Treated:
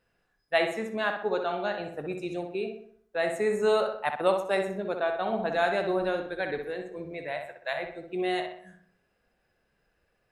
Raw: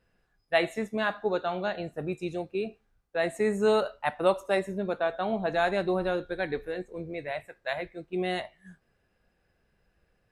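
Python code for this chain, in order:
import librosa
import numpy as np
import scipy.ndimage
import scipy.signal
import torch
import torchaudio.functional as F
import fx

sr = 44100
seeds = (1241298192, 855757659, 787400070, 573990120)

p1 = fx.low_shelf(x, sr, hz=210.0, db=-8.0)
y = p1 + fx.echo_filtered(p1, sr, ms=63, feedback_pct=50, hz=3100.0, wet_db=-5.5, dry=0)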